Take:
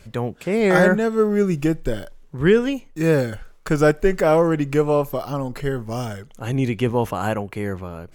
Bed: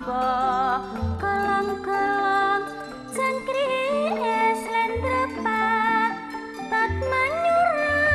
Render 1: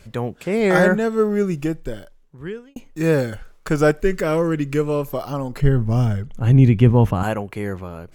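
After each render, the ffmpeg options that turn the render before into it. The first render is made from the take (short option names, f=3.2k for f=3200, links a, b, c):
-filter_complex "[0:a]asettb=1/sr,asplit=3[a][b][c];[a]atrim=end=4.014[d];[b]atrim=start=4.01:end=5.08,asetpts=PTS-STARTPTS,afade=t=in:d=0.004:c=qsin,afade=t=out:st=1.066:d=0.004:c=qsin,equalizer=f=760:w=2:g=-11[e];[c]atrim=start=5.076[f];[d][e]acrossfade=d=0.004:c1=hsin:c2=qsin[g];[g][f]acrossfade=d=0.004:c1=qsin:c2=hsin,asettb=1/sr,asplit=3[h][i][j];[h]atrim=end=5.614[k];[i]atrim=start=5.61:end=7.23,asetpts=PTS-STARTPTS,afade=t=in:d=0.004:c=qsin,afade=t=out:st=1.616:d=0.004:c=qsin,bass=f=250:g=13,treble=f=4k:g=-6[l];[j]atrim=start=7.226[m];[k][l]acrossfade=d=0.004:c1=hsin:c2=qsin[n];[n][m]acrossfade=d=0.004:c1=qsin:c2=hsin,asplit=2[o][p];[o]atrim=end=2.76,asetpts=PTS-STARTPTS,afade=t=out:st=1.22:d=1.54[q];[p]atrim=start=2.76,asetpts=PTS-STARTPTS,afade=t=in:d=0.004:c=hsin[r];[q][r]concat=n=2:v=0:a=1"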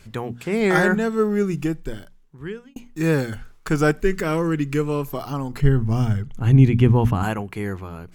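-af "equalizer=f=560:w=3.3:g=-9,bandreject=f=60:t=h:w=6,bandreject=f=120:t=h:w=6,bandreject=f=180:t=h:w=6,bandreject=f=240:t=h:w=6"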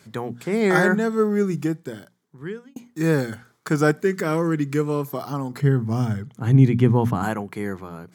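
-af "highpass=f=120:w=0.5412,highpass=f=120:w=1.3066,equalizer=f=2.7k:t=o:w=0.31:g=-9"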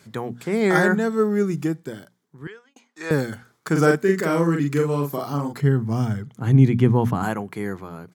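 -filter_complex "[0:a]asettb=1/sr,asplit=3[a][b][c];[a]atrim=end=2.474[d];[b]atrim=start=2.47:end=3.11,asetpts=PTS-STARTPTS,afade=t=in:d=0.004:c=qsin,afade=t=out:st=0.636:d=0.004:c=qsin,highpass=740,lowpass=6.2k[e];[c]atrim=start=3.106[f];[d][e]acrossfade=d=0.004:c1=hsin:c2=qsin[g];[g][f]acrossfade=d=0.004:c1=qsin:c2=hsin,asplit=3[h][i][j];[h]afade=t=out:st=3.75:d=0.02[k];[i]asplit=2[l][m];[m]adelay=42,volume=-3dB[n];[l][n]amix=inputs=2:normalize=0,afade=t=in:st=3.75:d=0.02,afade=t=out:st=5.52:d=0.02[o];[j]afade=t=in:st=5.52:d=0.02[p];[k][o][p]amix=inputs=3:normalize=0"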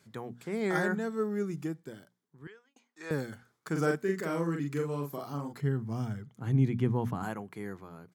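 -af "volume=-11.5dB"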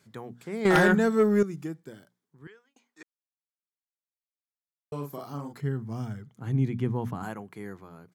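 -filter_complex "[0:a]asettb=1/sr,asplit=3[a][b][c];[a]atrim=end=0.654[d];[b]atrim=start=0.65:end=1.43,asetpts=PTS-STARTPTS,afade=t=in:d=0.004:c=qsin,afade=t=out:st=0.776:d=0.004:c=qsin,aeval=exprs='0.211*sin(PI/2*2.24*val(0)/0.211)':c=same[e];[c]atrim=start=1.426[f];[d][e]acrossfade=d=0.004:c1=hsin:c2=qsin[g];[g][f]acrossfade=d=0.004:c1=qsin:c2=hsin,asplit=3[h][i][j];[h]atrim=end=3.03,asetpts=PTS-STARTPTS,afade=t=out:st=3.026:d=0.004:c=hsin[k];[i]atrim=start=3.03:end=4.92,asetpts=PTS-STARTPTS,volume=0[l];[j]atrim=start=4.92,asetpts=PTS-STARTPTS,afade=t=in:d=0.004:c=hsin[m];[k][l][m]concat=n=3:v=0:a=1"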